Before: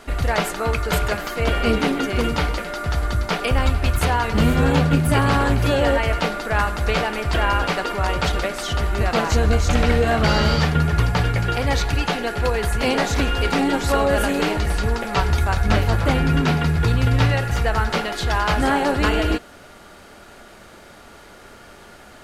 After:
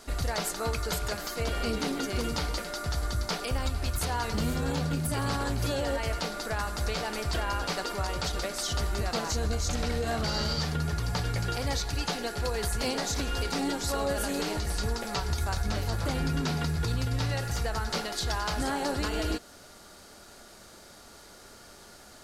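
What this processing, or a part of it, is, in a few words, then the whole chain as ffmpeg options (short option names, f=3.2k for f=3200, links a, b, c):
over-bright horn tweeter: -af "highshelf=f=3.6k:t=q:w=1.5:g=7.5,alimiter=limit=-12dB:level=0:latency=1:release=160,volume=-8dB"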